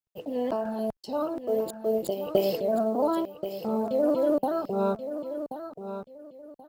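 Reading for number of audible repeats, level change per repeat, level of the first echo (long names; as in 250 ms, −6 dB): 2, −12.5 dB, −10.0 dB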